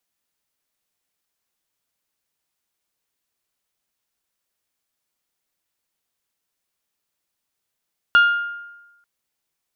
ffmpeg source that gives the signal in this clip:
ffmpeg -f lavfi -i "aevalsrc='0.398*pow(10,-3*t/1.06)*sin(2*PI*1410*t)+0.112*pow(10,-3*t/0.653)*sin(2*PI*2820*t)+0.0316*pow(10,-3*t/0.574)*sin(2*PI*3384*t)+0.00891*pow(10,-3*t/0.491)*sin(2*PI*4230*t)+0.00251*pow(10,-3*t/0.402)*sin(2*PI*5640*t)':duration=0.89:sample_rate=44100" out.wav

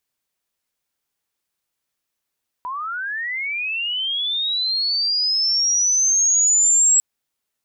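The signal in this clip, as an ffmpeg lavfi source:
ffmpeg -f lavfi -i "aevalsrc='pow(10,(-25+13.5*t/4.35)/20)*sin(2*PI*(970*t+6730*t*t/(2*4.35)))':duration=4.35:sample_rate=44100" out.wav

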